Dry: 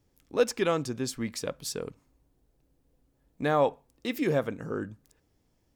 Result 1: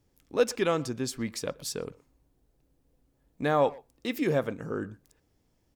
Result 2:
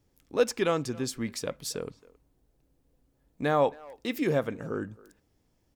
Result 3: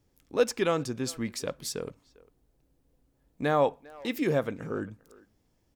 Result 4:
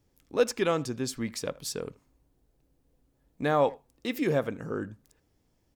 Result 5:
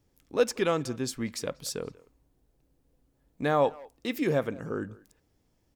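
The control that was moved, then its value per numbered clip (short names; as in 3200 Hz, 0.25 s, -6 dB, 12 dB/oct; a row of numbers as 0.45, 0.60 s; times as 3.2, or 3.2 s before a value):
speakerphone echo, time: 120, 270, 400, 80, 190 ms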